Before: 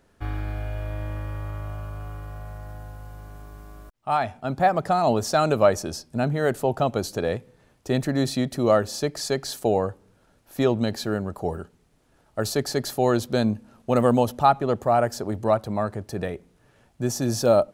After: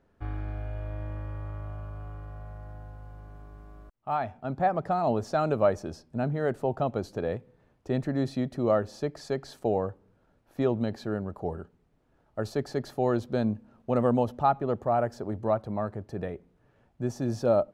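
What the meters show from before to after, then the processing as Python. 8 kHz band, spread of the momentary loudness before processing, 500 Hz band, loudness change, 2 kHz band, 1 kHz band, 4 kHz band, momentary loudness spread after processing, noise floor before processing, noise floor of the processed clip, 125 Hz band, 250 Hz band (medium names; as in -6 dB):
under -15 dB, 18 LU, -5.0 dB, -5.5 dB, -8.5 dB, -6.0 dB, -14.5 dB, 17 LU, -62 dBFS, -67 dBFS, -4.5 dB, -4.5 dB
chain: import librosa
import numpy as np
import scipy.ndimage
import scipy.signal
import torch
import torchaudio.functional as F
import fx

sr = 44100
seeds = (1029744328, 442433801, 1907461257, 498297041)

y = fx.lowpass(x, sr, hz=1400.0, slope=6)
y = y * 10.0 ** (-4.5 / 20.0)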